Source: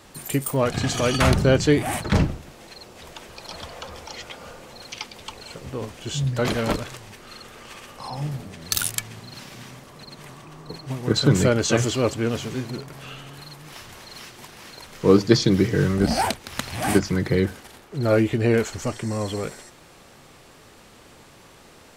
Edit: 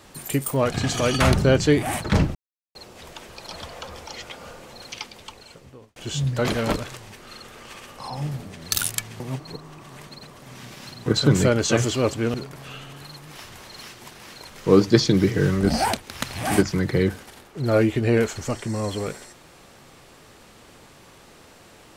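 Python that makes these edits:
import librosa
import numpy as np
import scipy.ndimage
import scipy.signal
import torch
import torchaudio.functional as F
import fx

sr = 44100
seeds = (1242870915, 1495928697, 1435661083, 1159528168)

y = fx.edit(x, sr, fx.silence(start_s=2.35, length_s=0.4),
    fx.fade_out_span(start_s=4.93, length_s=1.03),
    fx.reverse_span(start_s=9.2, length_s=1.86),
    fx.cut(start_s=12.34, length_s=0.37), tone=tone)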